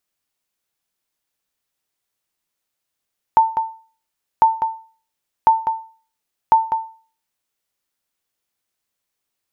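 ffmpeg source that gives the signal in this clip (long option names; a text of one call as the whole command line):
ffmpeg -f lavfi -i "aevalsrc='0.596*(sin(2*PI*895*mod(t,1.05))*exp(-6.91*mod(t,1.05)/0.4)+0.376*sin(2*PI*895*max(mod(t,1.05)-0.2,0))*exp(-6.91*max(mod(t,1.05)-0.2,0)/0.4))':duration=4.2:sample_rate=44100" out.wav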